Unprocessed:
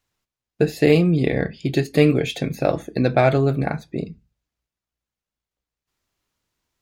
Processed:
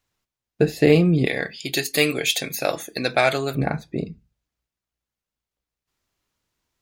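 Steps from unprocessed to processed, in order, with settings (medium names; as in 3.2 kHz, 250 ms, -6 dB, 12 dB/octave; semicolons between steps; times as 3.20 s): 1.26–3.55 s: tilt EQ +4.5 dB/octave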